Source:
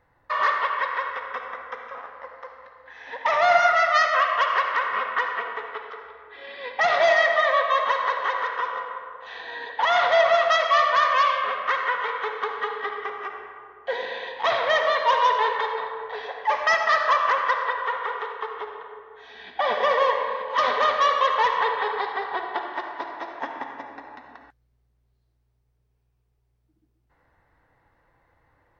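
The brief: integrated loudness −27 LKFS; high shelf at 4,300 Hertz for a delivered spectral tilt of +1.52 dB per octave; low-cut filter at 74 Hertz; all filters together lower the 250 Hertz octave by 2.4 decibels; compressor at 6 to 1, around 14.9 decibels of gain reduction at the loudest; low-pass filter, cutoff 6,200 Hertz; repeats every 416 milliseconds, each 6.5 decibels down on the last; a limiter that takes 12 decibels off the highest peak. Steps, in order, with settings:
high-pass filter 74 Hz
low-pass filter 6,200 Hz
parametric band 250 Hz −3.5 dB
high-shelf EQ 4,300 Hz −6 dB
downward compressor 6 to 1, threshold −32 dBFS
brickwall limiter −32.5 dBFS
repeating echo 416 ms, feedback 47%, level −6.5 dB
level +12.5 dB

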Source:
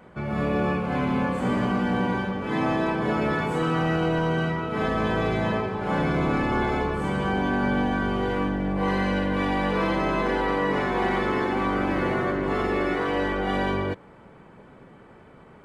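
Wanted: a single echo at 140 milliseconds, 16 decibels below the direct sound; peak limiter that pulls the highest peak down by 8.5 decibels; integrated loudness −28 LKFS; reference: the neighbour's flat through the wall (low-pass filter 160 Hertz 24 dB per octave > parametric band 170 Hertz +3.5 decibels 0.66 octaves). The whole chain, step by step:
brickwall limiter −23.5 dBFS
low-pass filter 160 Hz 24 dB per octave
parametric band 170 Hz +3.5 dB 0.66 octaves
single-tap delay 140 ms −16 dB
level +11 dB

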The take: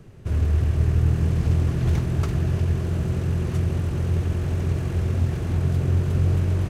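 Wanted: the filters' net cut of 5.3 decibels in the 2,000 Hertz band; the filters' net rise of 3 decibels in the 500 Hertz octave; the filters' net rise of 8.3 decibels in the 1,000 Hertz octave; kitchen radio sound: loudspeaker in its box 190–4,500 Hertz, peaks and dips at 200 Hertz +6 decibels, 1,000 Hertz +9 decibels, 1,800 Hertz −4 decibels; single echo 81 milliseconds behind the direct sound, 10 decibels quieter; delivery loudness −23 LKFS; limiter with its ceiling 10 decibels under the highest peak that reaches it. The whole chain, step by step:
parametric band 500 Hz +3 dB
parametric band 1,000 Hz +6 dB
parametric band 2,000 Hz −8 dB
brickwall limiter −18.5 dBFS
loudspeaker in its box 190–4,500 Hz, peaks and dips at 200 Hz +6 dB, 1,000 Hz +9 dB, 1,800 Hz −4 dB
single-tap delay 81 ms −10 dB
level +9 dB

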